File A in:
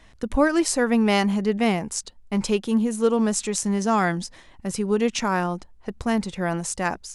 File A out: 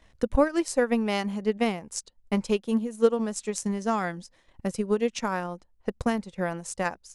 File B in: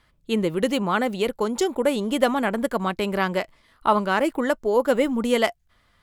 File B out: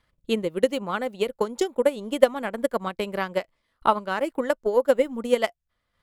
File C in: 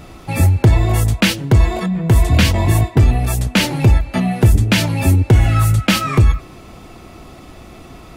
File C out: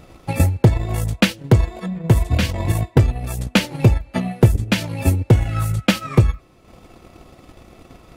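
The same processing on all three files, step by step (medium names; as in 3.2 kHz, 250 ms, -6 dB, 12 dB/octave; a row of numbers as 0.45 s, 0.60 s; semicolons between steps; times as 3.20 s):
transient shaper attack +9 dB, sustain -7 dB; peaking EQ 520 Hz +5.5 dB 0.31 oct; trim -8 dB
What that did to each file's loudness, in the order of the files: -4.5 LU, -2.0 LU, -4.0 LU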